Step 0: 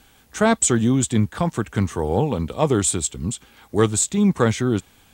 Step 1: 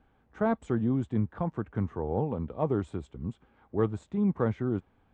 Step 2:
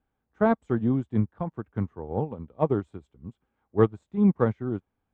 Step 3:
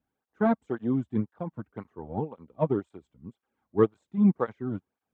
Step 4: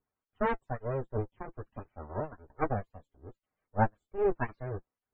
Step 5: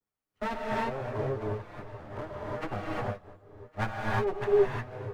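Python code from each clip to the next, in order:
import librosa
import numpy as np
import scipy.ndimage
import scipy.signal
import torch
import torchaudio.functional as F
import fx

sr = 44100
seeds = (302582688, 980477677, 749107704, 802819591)

y1 = scipy.signal.sosfilt(scipy.signal.butter(2, 1200.0, 'lowpass', fs=sr, output='sos'), x)
y1 = y1 * 10.0 ** (-9.0 / 20.0)
y2 = fx.upward_expand(y1, sr, threshold_db=-37.0, expansion=2.5)
y2 = y2 * 10.0 ** (8.5 / 20.0)
y3 = fx.flanger_cancel(y2, sr, hz=1.9, depth_ms=2.7)
y4 = np.abs(y3)
y4 = fx.spec_topn(y4, sr, count=64)
y4 = fx.notch_comb(y4, sr, f0_hz=170.0)
y5 = fx.lower_of_two(y4, sr, delay_ms=9.8)
y5 = y5 + 10.0 ** (-23.5 / 20.0) * np.pad(y5, (int(1111 * sr / 1000.0), 0))[:len(y5)]
y5 = fx.rev_gated(y5, sr, seeds[0], gate_ms=380, shape='rising', drr_db=-4.5)
y5 = y5 * 10.0 ** (-2.0 / 20.0)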